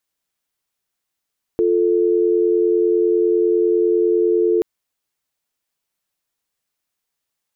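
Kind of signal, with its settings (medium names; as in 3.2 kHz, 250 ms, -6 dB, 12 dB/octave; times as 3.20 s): call progress tone dial tone, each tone -16 dBFS 3.03 s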